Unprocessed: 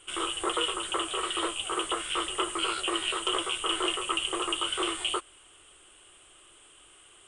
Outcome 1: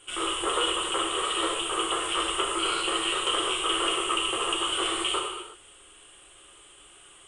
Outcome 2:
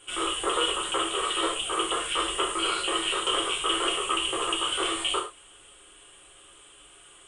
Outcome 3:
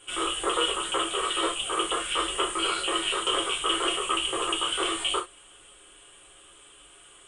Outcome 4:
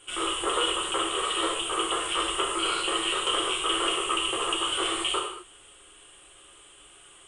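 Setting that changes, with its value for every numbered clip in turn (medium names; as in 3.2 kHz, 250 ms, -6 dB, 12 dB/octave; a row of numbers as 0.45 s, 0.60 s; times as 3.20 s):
gated-style reverb, gate: 390 ms, 140 ms, 90 ms, 260 ms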